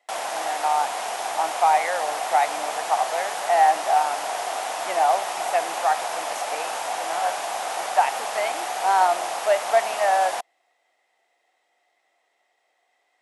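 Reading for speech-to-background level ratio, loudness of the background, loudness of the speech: 4.0 dB, −28.0 LKFS, −24.0 LKFS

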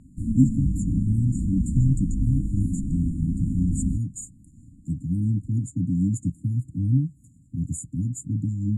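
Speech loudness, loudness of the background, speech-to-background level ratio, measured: −26.0 LKFS, −28.5 LKFS, 2.5 dB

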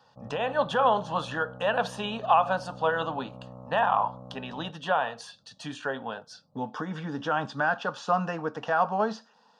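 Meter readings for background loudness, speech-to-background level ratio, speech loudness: −45.5 LKFS, 17.0 dB, −28.5 LKFS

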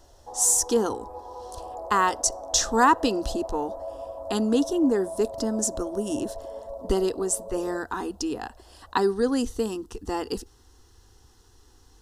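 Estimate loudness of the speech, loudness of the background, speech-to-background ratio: −25.5 LKFS, −38.0 LKFS, 12.5 dB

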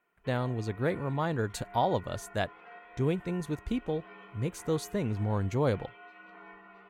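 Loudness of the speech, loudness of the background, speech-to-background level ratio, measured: −32.5 LKFS, −51.0 LKFS, 18.5 dB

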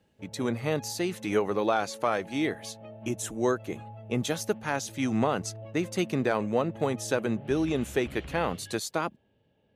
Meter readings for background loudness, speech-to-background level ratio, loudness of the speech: −46.0 LKFS, 16.0 dB, −30.0 LKFS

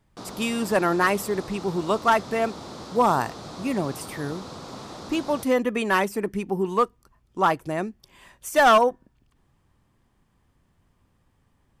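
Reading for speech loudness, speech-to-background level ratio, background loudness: −24.0 LKFS, 15.0 dB, −39.0 LKFS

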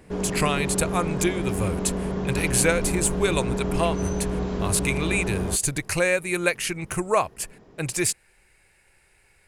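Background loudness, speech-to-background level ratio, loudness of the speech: −28.0 LKFS, 2.5 dB, −25.5 LKFS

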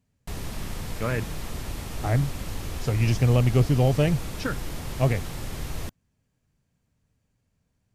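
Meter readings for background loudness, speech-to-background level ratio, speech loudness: −35.5 LKFS, 10.5 dB, −25.0 LKFS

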